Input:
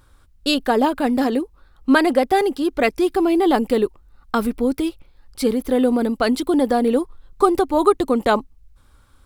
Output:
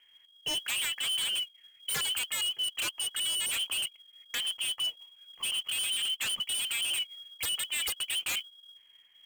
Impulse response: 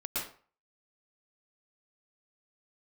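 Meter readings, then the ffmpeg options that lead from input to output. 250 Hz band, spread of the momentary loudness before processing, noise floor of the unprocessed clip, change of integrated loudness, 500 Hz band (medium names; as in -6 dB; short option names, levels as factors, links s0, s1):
-40.0 dB, 8 LU, -54 dBFS, -11.0 dB, -36.0 dB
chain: -af "lowpass=f=2800:t=q:w=0.5098,lowpass=f=2800:t=q:w=0.6013,lowpass=f=2800:t=q:w=0.9,lowpass=f=2800:t=q:w=2.563,afreqshift=-3300,acrusher=bits=4:mode=log:mix=0:aa=0.000001,aeval=exprs='0.126*(abs(mod(val(0)/0.126+3,4)-2)-1)':c=same,volume=0.376"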